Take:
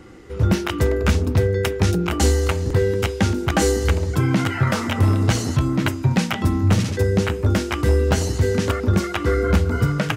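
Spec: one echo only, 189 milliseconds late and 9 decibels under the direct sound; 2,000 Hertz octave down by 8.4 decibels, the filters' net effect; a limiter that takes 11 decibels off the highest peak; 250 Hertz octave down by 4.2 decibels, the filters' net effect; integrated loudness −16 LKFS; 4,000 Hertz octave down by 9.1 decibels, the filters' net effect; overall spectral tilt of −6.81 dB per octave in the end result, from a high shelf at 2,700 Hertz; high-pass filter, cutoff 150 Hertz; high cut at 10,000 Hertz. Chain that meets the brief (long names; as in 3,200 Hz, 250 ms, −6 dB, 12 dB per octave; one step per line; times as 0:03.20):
high-pass filter 150 Hz
low-pass filter 10,000 Hz
parametric band 250 Hz −4.5 dB
parametric band 2,000 Hz −8 dB
high-shelf EQ 2,700 Hz −6 dB
parametric band 4,000 Hz −4 dB
brickwall limiter −20 dBFS
single-tap delay 189 ms −9 dB
level +12.5 dB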